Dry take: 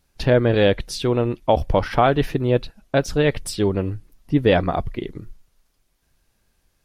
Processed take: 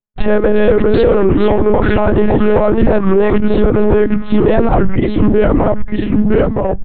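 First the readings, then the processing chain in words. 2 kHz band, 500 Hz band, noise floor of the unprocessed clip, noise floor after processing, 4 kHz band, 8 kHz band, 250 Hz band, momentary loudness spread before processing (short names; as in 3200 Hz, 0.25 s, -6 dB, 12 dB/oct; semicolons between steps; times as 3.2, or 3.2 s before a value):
+5.5 dB, +9.5 dB, -68 dBFS, -19 dBFS, -2.0 dB, under -30 dB, +11.5 dB, 9 LU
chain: LPF 1600 Hz 12 dB/oct; notches 60/120/180/240/300/360 Hz; gate -55 dBFS, range -41 dB; comb 3.9 ms, depth 38%; compressor 2:1, threshold -29 dBFS, peak gain reduction 10 dB; sample leveller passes 1; echoes that change speed 0.345 s, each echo -2 st, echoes 3; monotone LPC vocoder at 8 kHz 210 Hz; maximiser +17.5 dB; record warp 33 1/3 rpm, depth 160 cents; gain -1 dB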